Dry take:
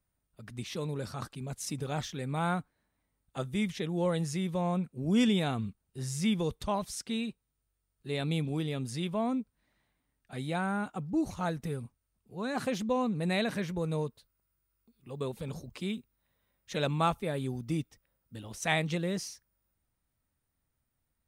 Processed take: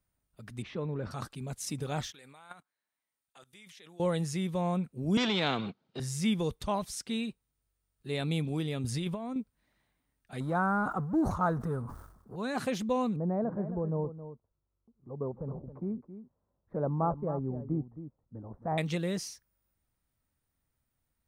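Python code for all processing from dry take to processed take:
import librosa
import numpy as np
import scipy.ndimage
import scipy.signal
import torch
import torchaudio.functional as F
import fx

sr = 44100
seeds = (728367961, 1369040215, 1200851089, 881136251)

y = fx.chain(x, sr, fx.lowpass(hz=1800.0, slope=12),
    fx.transient(attack_db=1, sustain_db=5), at=(0.62, 1.11))
y = fx.chain(y, sr, fx.highpass(hz=1500.0, slope=6),
    fx.level_steps(step_db=18), at=(2.12, 4.0))
y = fx.chain(y, sr, fx.leveller(passes=1),
    fx.cabinet(low_hz=160.0, low_slope=24, high_hz=4100.0, hz=(1100.0, 1800.0, 2700.0), db=(-4, -7, -6)),
    fx.spectral_comp(ratio=2.0), at=(5.17, 6.0))
y = fx.chain(y, sr, fx.peak_eq(hz=81.0, db=12.5, octaves=0.66),
    fx.over_compress(threshold_db=-33.0, ratio=-0.5), at=(8.84, 9.36))
y = fx.chain(y, sr, fx.law_mismatch(coded='mu'),
    fx.high_shelf_res(hz=1800.0, db=-12.0, q=3.0),
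    fx.sustainer(db_per_s=68.0), at=(10.4, 12.36))
y = fx.chain(y, sr, fx.cheby2_lowpass(hz=2700.0, order=4, stop_db=50),
    fx.echo_single(ms=269, db=-12.0), at=(13.16, 18.78))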